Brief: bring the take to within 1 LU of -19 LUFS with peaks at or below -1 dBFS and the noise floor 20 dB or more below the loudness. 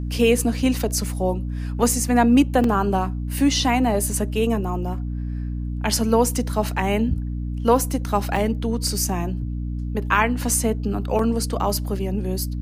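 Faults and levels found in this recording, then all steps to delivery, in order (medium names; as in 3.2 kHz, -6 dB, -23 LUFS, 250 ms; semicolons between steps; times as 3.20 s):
dropouts 3; longest dropout 2.6 ms; hum 60 Hz; highest harmonic 300 Hz; hum level -25 dBFS; loudness -22.0 LUFS; peak level -5.0 dBFS; loudness target -19.0 LUFS
-> interpolate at 2.64/8.36/11.19 s, 2.6 ms; de-hum 60 Hz, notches 5; trim +3 dB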